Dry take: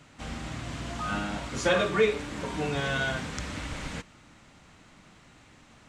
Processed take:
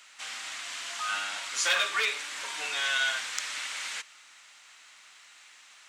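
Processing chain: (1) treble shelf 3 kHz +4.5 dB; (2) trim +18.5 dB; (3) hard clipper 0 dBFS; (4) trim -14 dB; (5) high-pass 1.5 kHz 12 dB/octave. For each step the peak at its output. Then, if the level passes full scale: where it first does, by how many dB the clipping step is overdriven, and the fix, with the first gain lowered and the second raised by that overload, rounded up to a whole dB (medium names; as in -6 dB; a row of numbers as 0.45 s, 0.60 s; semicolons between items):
-9.5 dBFS, +9.0 dBFS, 0.0 dBFS, -14.0 dBFS, -11.5 dBFS; step 2, 9.0 dB; step 2 +9.5 dB, step 4 -5 dB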